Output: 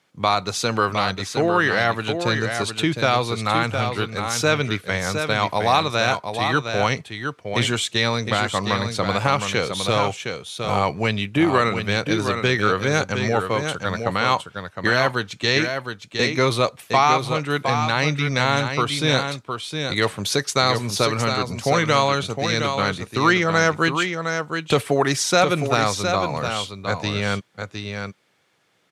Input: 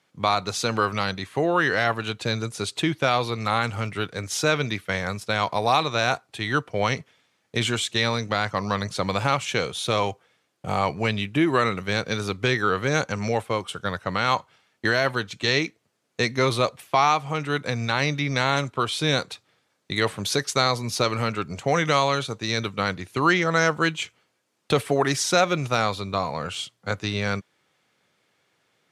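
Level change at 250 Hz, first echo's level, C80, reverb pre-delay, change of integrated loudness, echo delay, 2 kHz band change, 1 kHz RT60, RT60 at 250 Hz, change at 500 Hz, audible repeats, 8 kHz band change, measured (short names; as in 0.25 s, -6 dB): +3.5 dB, -6.5 dB, none, none, +3.0 dB, 0.712 s, +3.5 dB, none, none, +3.5 dB, 1, +3.5 dB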